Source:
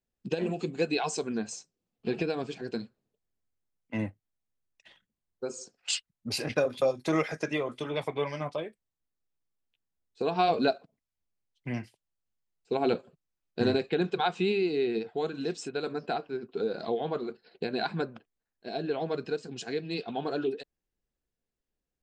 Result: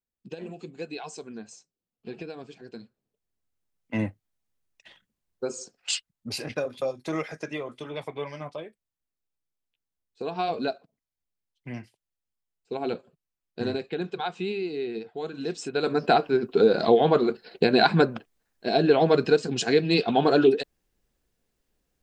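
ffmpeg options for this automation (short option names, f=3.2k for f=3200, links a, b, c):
-af "volume=19.5dB,afade=t=in:st=2.76:d=1.18:silence=0.237137,afade=t=out:st=5.46:d=1.13:silence=0.421697,afade=t=in:st=15.19:d=0.48:silence=0.473151,afade=t=in:st=15.67:d=0.47:silence=0.375837"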